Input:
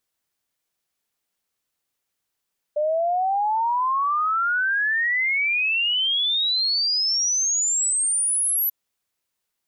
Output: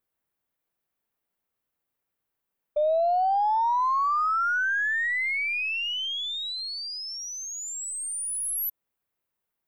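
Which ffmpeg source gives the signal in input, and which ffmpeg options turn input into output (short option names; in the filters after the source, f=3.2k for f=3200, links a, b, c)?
-f lavfi -i "aevalsrc='0.112*clip(min(t,5.94-t)/0.01,0,1)*sin(2*PI*590*5.94/log(12000/590)*(exp(log(12000/590)*t/5.94)-1))':d=5.94:s=44100"
-af "equalizer=f=5.9k:w=0.53:g=-14,aeval=exprs='0.106*(cos(1*acos(clip(val(0)/0.106,-1,1)))-cos(1*PI/2))+0.00188*(cos(6*acos(clip(val(0)/0.106,-1,1)))-cos(6*PI/2))':c=same"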